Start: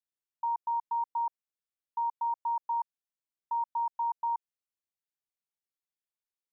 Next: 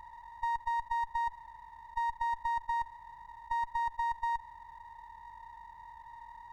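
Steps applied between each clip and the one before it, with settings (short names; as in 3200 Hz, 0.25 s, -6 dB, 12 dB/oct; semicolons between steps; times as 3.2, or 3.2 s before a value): per-bin compression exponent 0.2; running maximum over 9 samples; gain -1.5 dB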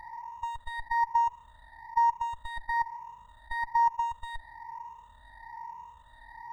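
moving spectral ripple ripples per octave 0.77, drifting +1.1 Hz, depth 20 dB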